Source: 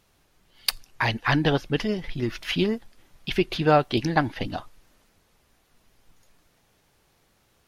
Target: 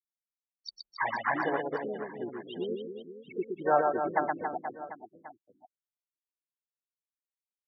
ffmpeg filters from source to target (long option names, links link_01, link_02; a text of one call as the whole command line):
ffmpeg -i in.wav -filter_complex "[0:a]tiltshelf=frequency=970:gain=5.5,afftfilt=real='re*gte(hypot(re,im),0.158)':imag='im*gte(hypot(re,im),0.158)':win_size=1024:overlap=0.75,aresample=16000,aresample=44100,acrossover=split=4100[link_01][link_02];[link_02]acompressor=threshold=-54dB:ratio=4:attack=1:release=60[link_03];[link_01][link_03]amix=inputs=2:normalize=0,asplit=2[link_04][link_05];[link_05]alimiter=limit=-13dB:level=0:latency=1:release=411,volume=-1.5dB[link_06];[link_04][link_06]amix=inputs=2:normalize=0,highpass=670,asplit=2[link_07][link_08];[link_08]asetrate=52444,aresample=44100,atempo=0.840896,volume=-9dB[link_09];[link_07][link_09]amix=inputs=2:normalize=0,aecho=1:1:120|276|478.8|742.4|1085:0.631|0.398|0.251|0.158|0.1,volume=-7dB" out.wav